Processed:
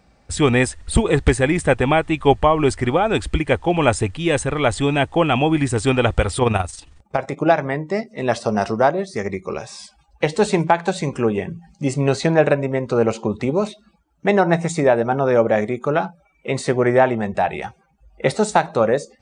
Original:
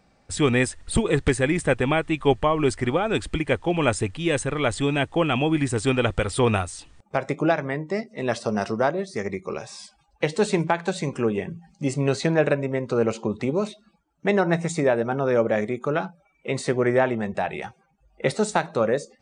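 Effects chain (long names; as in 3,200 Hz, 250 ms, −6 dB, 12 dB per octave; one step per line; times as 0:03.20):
dynamic equaliser 790 Hz, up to +5 dB, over −35 dBFS, Q 2
0:06.38–0:07.48: amplitude modulation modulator 22 Hz, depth 40%
parametric band 61 Hz +10 dB 0.77 octaves
level +3.5 dB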